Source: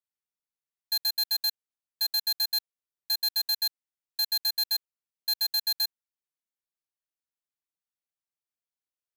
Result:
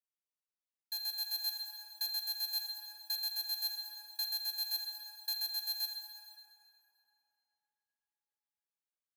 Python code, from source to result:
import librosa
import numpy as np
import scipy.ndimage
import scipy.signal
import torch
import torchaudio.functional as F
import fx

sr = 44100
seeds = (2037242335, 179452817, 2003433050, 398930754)

y = scipy.signal.sosfilt(scipy.signal.butter(2, 390.0, 'highpass', fs=sr, output='sos'), x)
y = fx.rev_plate(y, sr, seeds[0], rt60_s=3.4, hf_ratio=0.55, predelay_ms=0, drr_db=2.0)
y = fx.rider(y, sr, range_db=4, speed_s=0.5)
y = y * librosa.db_to_amplitude(-9.0)